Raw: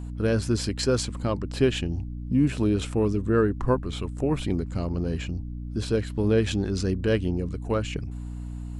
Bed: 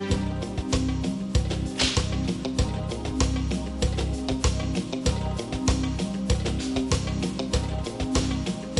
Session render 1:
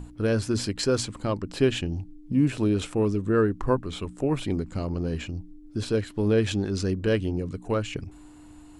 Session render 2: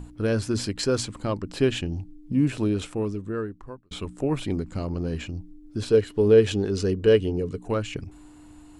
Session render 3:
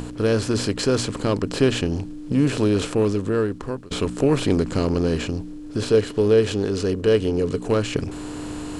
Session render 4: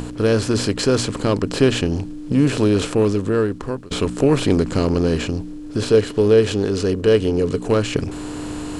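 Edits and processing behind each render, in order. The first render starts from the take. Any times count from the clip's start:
mains-hum notches 60/120/180/240 Hz
0:02.57–0:03.91: fade out; 0:05.91–0:07.63: hollow resonant body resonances 430/2,900 Hz, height 10 dB
compressor on every frequency bin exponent 0.6; speech leveller within 5 dB 2 s
level +3 dB

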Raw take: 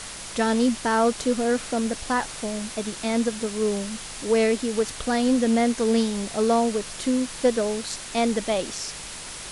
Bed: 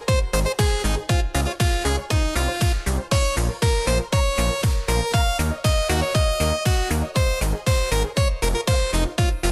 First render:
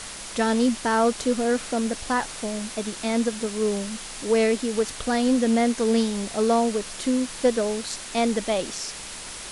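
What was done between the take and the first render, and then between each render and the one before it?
hum removal 50 Hz, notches 3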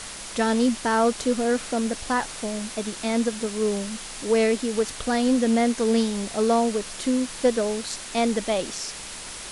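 no processing that can be heard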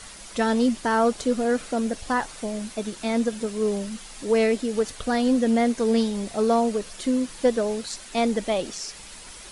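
broadband denoise 8 dB, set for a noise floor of −37 dBFS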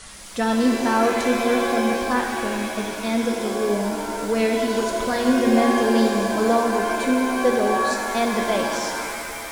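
reverb with rising layers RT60 2.3 s, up +7 semitones, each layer −2 dB, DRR 2 dB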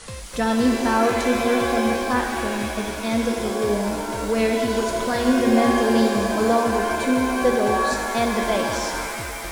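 mix in bed −17 dB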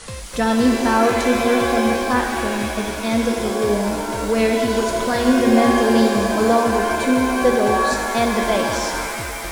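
level +3 dB

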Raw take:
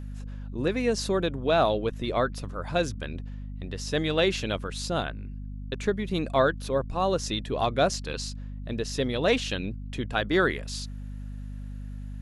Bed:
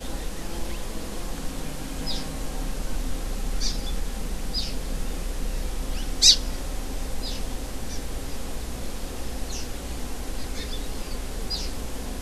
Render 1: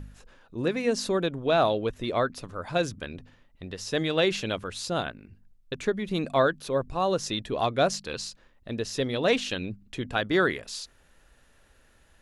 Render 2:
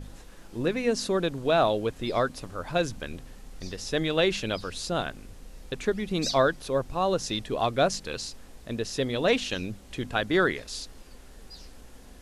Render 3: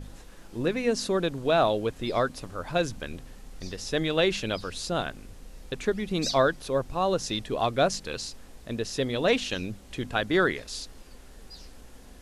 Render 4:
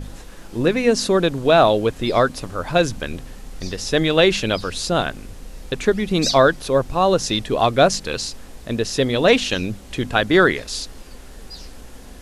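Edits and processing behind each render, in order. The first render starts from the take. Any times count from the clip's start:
hum removal 50 Hz, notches 5
mix in bed −17 dB
no processing that can be heard
level +9 dB; brickwall limiter −2 dBFS, peak gain reduction 1.5 dB

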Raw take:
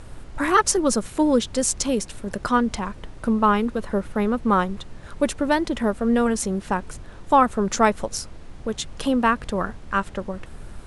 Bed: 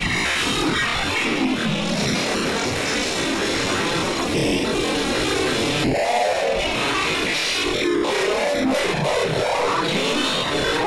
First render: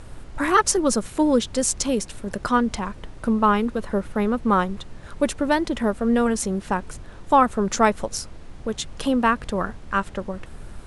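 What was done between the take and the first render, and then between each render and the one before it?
no processing that can be heard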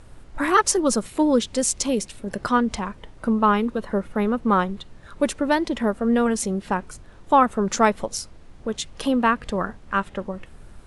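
noise reduction from a noise print 6 dB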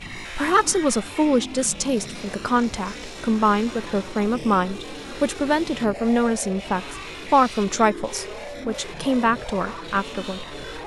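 mix in bed −14.5 dB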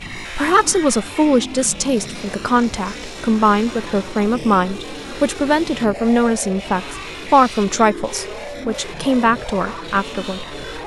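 level +4.5 dB
brickwall limiter −2 dBFS, peak gain reduction 1.5 dB

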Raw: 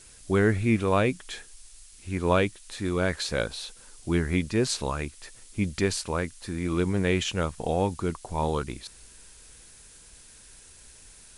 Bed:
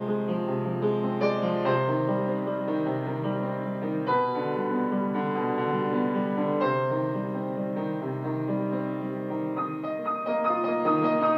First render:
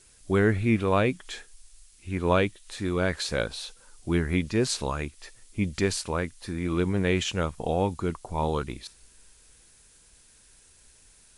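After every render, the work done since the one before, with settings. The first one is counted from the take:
noise reduction from a noise print 6 dB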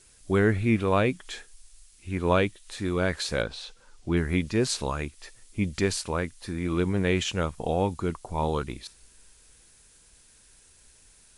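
0:03.42–0:04.17: high-frequency loss of the air 73 metres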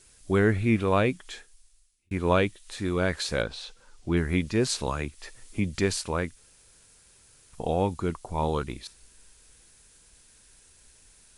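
0:01.05–0:02.11: fade out linear
0:04.87–0:05.75: multiband upward and downward compressor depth 40%
0:06.36–0:07.53: fill with room tone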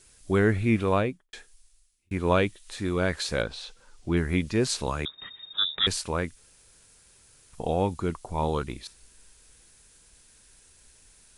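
0:00.89–0:01.33: fade out and dull
0:05.05–0:05.87: voice inversion scrambler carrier 3,700 Hz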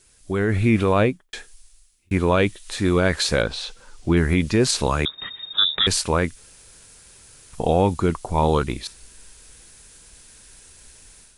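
brickwall limiter −17 dBFS, peak gain reduction 7 dB
automatic gain control gain up to 9 dB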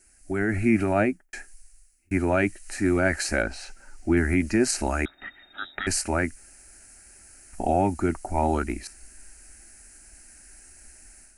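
phaser with its sweep stopped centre 710 Hz, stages 8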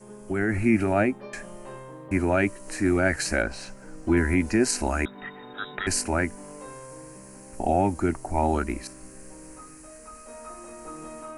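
mix in bed −17 dB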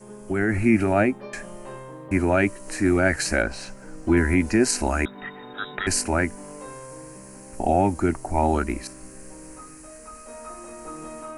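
level +2.5 dB

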